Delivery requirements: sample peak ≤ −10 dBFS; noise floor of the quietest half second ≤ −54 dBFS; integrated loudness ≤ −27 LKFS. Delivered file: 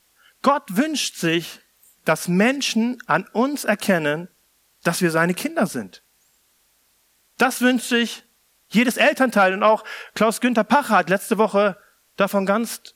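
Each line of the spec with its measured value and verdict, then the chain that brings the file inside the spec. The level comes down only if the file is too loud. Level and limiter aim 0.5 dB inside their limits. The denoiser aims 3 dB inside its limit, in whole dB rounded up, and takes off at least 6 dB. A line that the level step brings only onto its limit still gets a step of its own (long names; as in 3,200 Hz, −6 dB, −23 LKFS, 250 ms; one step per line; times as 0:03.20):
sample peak −4.5 dBFS: out of spec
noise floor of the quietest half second −63 dBFS: in spec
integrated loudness −20.0 LKFS: out of spec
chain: level −7.5 dB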